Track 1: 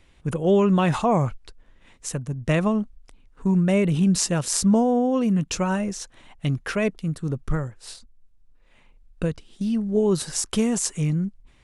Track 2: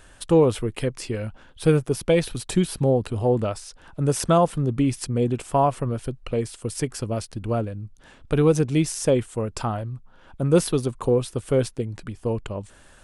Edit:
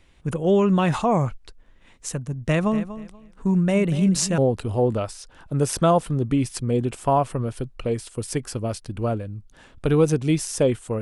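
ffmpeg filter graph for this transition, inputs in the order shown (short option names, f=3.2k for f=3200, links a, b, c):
-filter_complex "[0:a]asettb=1/sr,asplit=3[a][b][c];[a]atrim=end=2.394[d];[b]atrim=start=2.39:end=4.38,asetpts=PTS-STARTPTS,afade=t=in:d=0.004:c=qsin,afade=t=out:st=1.986:d=0.004:c=qsin,aecho=1:1:240|480|720:0.211|0.0465|0.0102,atrim=end_sample=87759[e];[c]atrim=start=4.376[f];[d][e]acrossfade=d=0.004:c1=hsin:c2=qsin[g];[g][f]acrossfade=d=0.004:c1=qsin:c2=hsin,apad=whole_dur=11.01,atrim=end=11.01,atrim=end=4.382[h];[1:a]atrim=start=2.848:end=9.48[i];[h][i]acrossfade=d=0.004:c1=hsin:c2=hsin"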